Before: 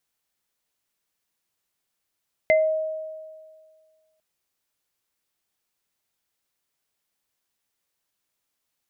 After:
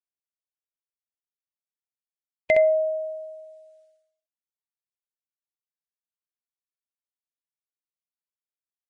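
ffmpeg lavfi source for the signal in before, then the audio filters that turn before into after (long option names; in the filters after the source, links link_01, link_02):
-f lavfi -i "aevalsrc='0.2*pow(10,-3*t/1.85)*sin(2*PI*630*t)+0.158*pow(10,-3*t/0.22)*sin(2*PI*2070*t)':duration=1.7:sample_rate=44100"
-filter_complex "[0:a]agate=range=-33dB:threshold=-58dB:ratio=3:detection=peak,asplit=2[link_01][link_02];[link_02]aecho=0:1:47|65:0.178|0.596[link_03];[link_01][link_03]amix=inputs=2:normalize=0" -ar 22050 -c:a libvorbis -b:a 32k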